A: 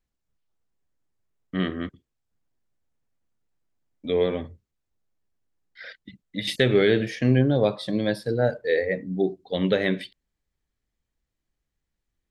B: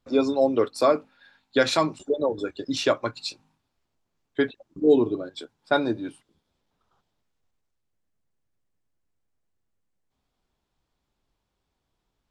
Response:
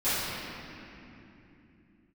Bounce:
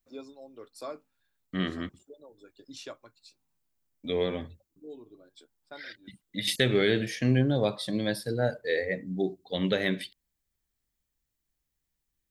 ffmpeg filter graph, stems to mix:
-filter_complex "[0:a]equalizer=f=460:t=o:w=0.77:g=-2.5,volume=-4dB,asplit=2[a][b];[1:a]tremolo=f=1.1:d=0.64,volume=-19.5dB[c];[b]apad=whole_len=542637[d];[c][d]sidechaincompress=threshold=-47dB:ratio=8:attack=16:release=132[e];[a][e]amix=inputs=2:normalize=0,aemphasis=mode=production:type=50kf"

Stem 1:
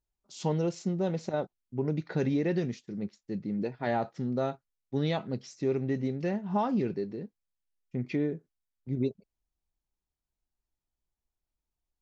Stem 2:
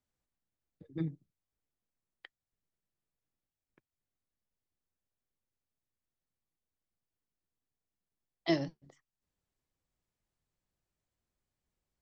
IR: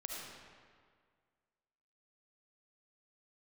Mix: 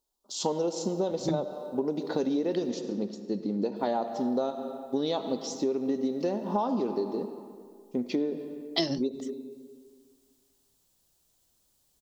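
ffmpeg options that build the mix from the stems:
-filter_complex "[0:a]equalizer=f=125:t=o:w=1:g=-12,equalizer=f=250:t=o:w=1:g=10,equalizer=f=500:t=o:w=1:g=7,equalizer=f=1k:t=o:w=1:g=11,equalizer=f=2k:t=o:w=1:g=-3,equalizer=f=4k:t=o:w=1:g=4,volume=-7.5dB,asplit=2[a][b];[b]volume=-6.5dB[c];[1:a]acontrast=74,adelay=300,volume=0.5dB,asplit=3[d][e][f];[d]atrim=end=2.7,asetpts=PTS-STARTPTS,afade=t=out:st=2.696:d=0.004:c=hsin[g];[e]atrim=start=2.7:end=3.76,asetpts=PTS-STARTPTS,volume=0[h];[f]atrim=start=3.76,asetpts=PTS-STARTPTS,afade=t=in:d=0.004:c=hsin[i];[g][h][i]concat=n=3:v=0:a=1[j];[2:a]atrim=start_sample=2205[k];[c][k]afir=irnorm=-1:irlink=0[l];[a][j][l]amix=inputs=3:normalize=0,equalizer=f=490:w=0.35:g=4.5,aexciter=amount=4.5:drive=5.2:freq=3.1k,acompressor=threshold=-25dB:ratio=6"

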